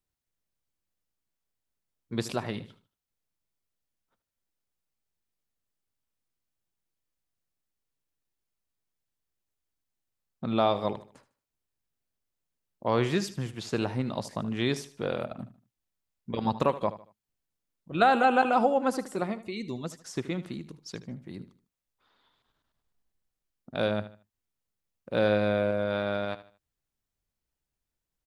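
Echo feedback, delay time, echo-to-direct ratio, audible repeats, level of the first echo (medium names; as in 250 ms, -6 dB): 33%, 76 ms, -14.5 dB, 3, -15.0 dB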